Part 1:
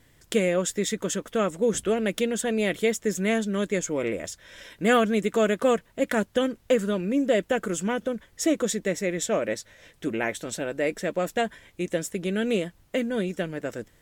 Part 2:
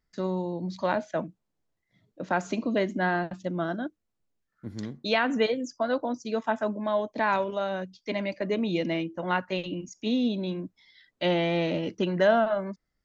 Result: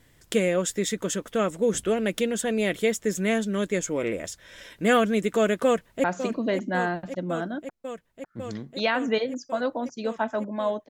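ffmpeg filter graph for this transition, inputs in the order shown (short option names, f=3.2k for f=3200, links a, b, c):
-filter_complex "[0:a]apad=whole_dur=10.89,atrim=end=10.89,atrim=end=6.042[a];[1:a]atrim=start=2.318:end=7.17[b];[a][b]acrossfade=d=0.004:c1=hsin:c2=hsin,asplit=2[c][d];[d]afade=t=in:st=5.64:d=0.01,afade=t=out:st=6.04:d=0.01,aecho=0:1:550|1100|1650|2200|2750|3300|3850|4400|4950|5500|6050|6600:0.316228|0.268794|0.228475|0.194203|0.165073|0.140312|0.119265|0.101375|0.0861691|0.0732437|0.0622572|0.0529186[e];[c][e]amix=inputs=2:normalize=0"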